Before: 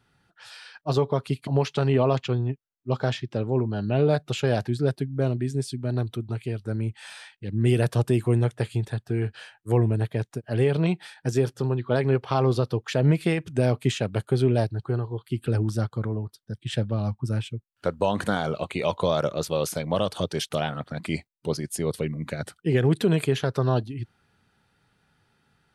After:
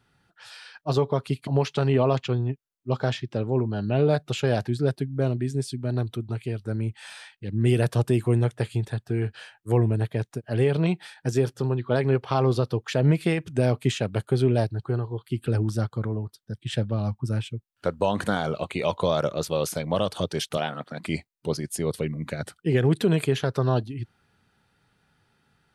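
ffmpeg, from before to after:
ffmpeg -i in.wav -filter_complex "[0:a]asettb=1/sr,asplit=3[link_01][link_02][link_03];[link_01]atrim=end=20.574[link_04];[link_02]atrim=start=20.57:end=21.04,asetpts=PTS-STARTPTS,afade=type=in:duration=0.004:curve=qsin,afade=type=out:start_time=0.466:duration=0.004:curve=qsin,highpass=190[link_05];[link_03]atrim=start=21.036[link_06];[link_04][link_05]acrossfade=duration=0.004:curve1=hsin:curve2=qsin[link_07];[link_07][link_06]acrossfade=duration=0.004:curve1=qsin:curve2=hsin" out.wav

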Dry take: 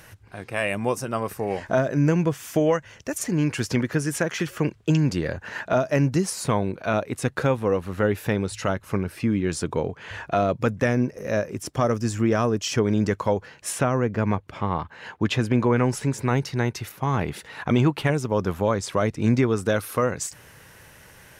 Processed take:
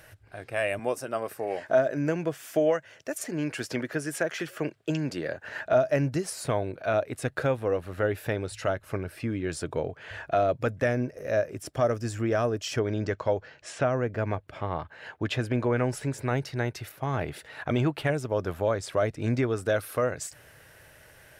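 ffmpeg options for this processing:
ffmpeg -i in.wav -filter_complex "[0:a]asettb=1/sr,asplit=3[link_01][link_02][link_03];[link_01]atrim=end=0.794[link_04];[link_02]atrim=start=0.79:end=5.45,asetpts=PTS-STARTPTS,afade=type=in:duration=0.004:curve=qsin,afade=type=out:start_time=4.656:duration=0.004:curve=qsin,highpass=180[link_05];[link_03]atrim=start=5.446[link_06];[link_04][link_05]acrossfade=duration=0.004:curve1=hsin:curve2=qsin[link_07];[link_07][link_06]acrossfade=duration=0.004:curve1=qsin:curve2=hsin,asettb=1/sr,asplit=3[link_08][link_09][link_10];[link_08]atrim=end=12.794[link_11];[link_09]atrim=start=12.79:end=13.91,asetpts=PTS-STARTPTS,afade=type=in:duration=0.004:curve=qsin,afade=type=out:start_time=1.116:duration=0.004:curve=qsin,lowpass=frequency=6800:width=0.5412,lowpass=frequency=6800:width=1.3066[link_12];[link_10]atrim=start=13.906[link_13];[link_11][link_12]acrossfade=duration=0.004:curve1=hsin:curve2=qsin[link_14];[link_14][link_13]acrossfade=duration=0.004:curve1=qsin:curve2=hsin,equalizer=frequency=200:width_type=o:width=0.33:gain=-10,equalizer=frequency=630:width_type=o:width=0.33:gain=7,equalizer=frequency=1000:width_type=o:width=0.33:gain=-5,equalizer=frequency=1600:width_type=o:width=0.33:gain=3,equalizer=frequency=6300:width_type=o:width=0.33:gain=-4,volume=-5dB" out.wav

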